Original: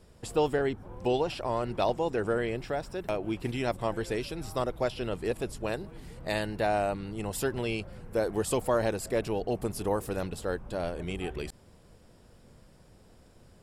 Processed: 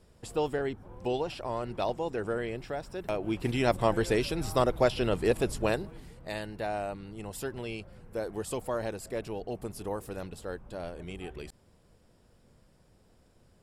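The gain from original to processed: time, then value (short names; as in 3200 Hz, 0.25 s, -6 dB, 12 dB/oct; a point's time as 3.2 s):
2.83 s -3.5 dB
3.75 s +5 dB
5.68 s +5 dB
6.2 s -6 dB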